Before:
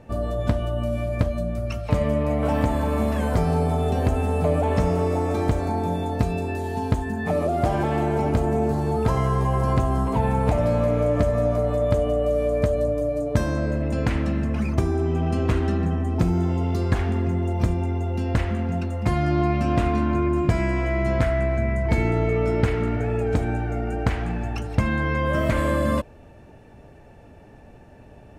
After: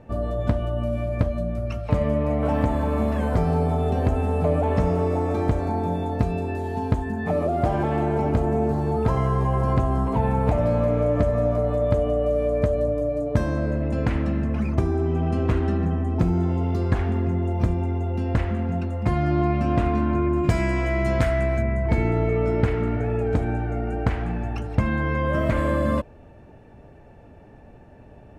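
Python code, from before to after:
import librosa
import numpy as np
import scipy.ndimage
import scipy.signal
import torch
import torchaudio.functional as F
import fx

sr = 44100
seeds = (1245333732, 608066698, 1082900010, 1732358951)

y = fx.high_shelf(x, sr, hz=3300.0, db=fx.steps((0.0, -9.5), (20.43, 4.0), (21.61, -9.5)))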